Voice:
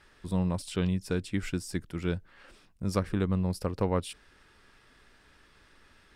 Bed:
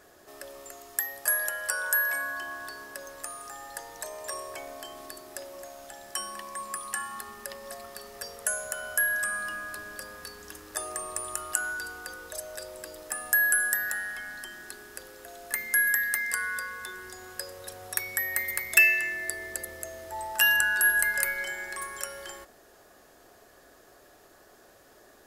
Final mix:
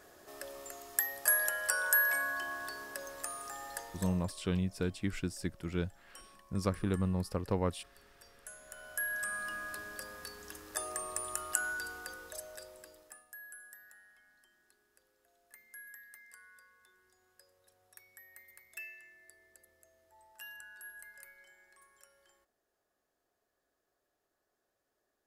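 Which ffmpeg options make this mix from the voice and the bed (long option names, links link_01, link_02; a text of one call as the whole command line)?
ffmpeg -i stem1.wav -i stem2.wav -filter_complex "[0:a]adelay=3700,volume=-4dB[link_01];[1:a]volume=15dB,afade=type=out:start_time=3.71:duration=0.62:silence=0.112202,afade=type=in:start_time=8.59:duration=1.08:silence=0.141254,afade=type=out:start_time=11.96:duration=1.3:silence=0.0707946[link_02];[link_01][link_02]amix=inputs=2:normalize=0" out.wav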